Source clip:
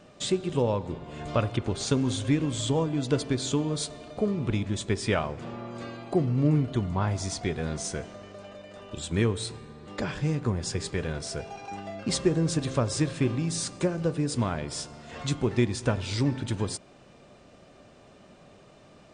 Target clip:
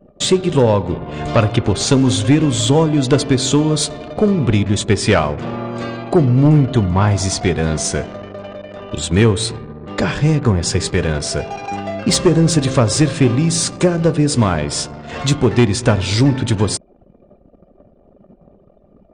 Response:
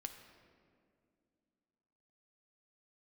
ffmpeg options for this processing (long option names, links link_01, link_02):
-af "anlmdn=0.0251,aeval=exprs='0.282*sin(PI/2*1.58*val(0)/0.282)':channel_layout=same,volume=6dB"